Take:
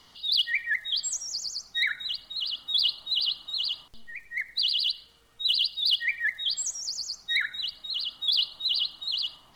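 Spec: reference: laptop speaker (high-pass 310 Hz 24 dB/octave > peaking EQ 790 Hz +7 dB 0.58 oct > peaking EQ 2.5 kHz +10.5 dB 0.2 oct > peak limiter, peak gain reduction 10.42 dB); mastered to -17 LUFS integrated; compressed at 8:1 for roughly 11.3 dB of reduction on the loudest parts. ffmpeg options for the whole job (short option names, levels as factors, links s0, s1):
-af "acompressor=threshold=0.0224:ratio=8,highpass=f=310:w=0.5412,highpass=f=310:w=1.3066,equalizer=f=790:t=o:w=0.58:g=7,equalizer=f=2500:t=o:w=0.2:g=10.5,volume=10.6,alimiter=limit=0.251:level=0:latency=1"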